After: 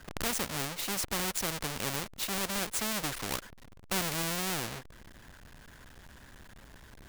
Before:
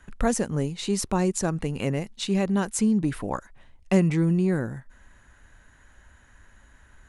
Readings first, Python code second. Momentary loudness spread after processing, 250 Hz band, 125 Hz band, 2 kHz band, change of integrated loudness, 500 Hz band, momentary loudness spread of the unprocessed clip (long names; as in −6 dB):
5 LU, −16.0 dB, −15.0 dB, +0.5 dB, −7.0 dB, −12.0 dB, 9 LU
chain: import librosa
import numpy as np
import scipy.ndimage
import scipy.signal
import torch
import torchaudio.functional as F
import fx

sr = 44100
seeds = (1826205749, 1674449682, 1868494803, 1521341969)

y = fx.halfwave_hold(x, sr)
y = fx.spectral_comp(y, sr, ratio=2.0)
y = y * 10.0 ** (-7.0 / 20.0)